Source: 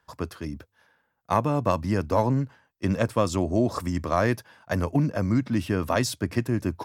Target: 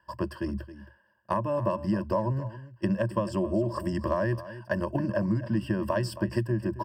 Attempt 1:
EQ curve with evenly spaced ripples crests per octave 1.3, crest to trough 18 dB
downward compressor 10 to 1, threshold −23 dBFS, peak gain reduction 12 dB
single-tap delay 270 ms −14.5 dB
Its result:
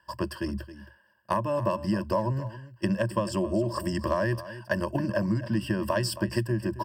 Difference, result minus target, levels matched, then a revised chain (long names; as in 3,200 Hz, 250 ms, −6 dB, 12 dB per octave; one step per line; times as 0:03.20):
4,000 Hz band +6.5 dB
EQ curve with evenly spaced ripples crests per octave 1.3, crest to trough 18 dB
downward compressor 10 to 1, threshold −23 dBFS, peak gain reduction 12 dB
high-shelf EQ 2,400 Hz −9.5 dB
single-tap delay 270 ms −14.5 dB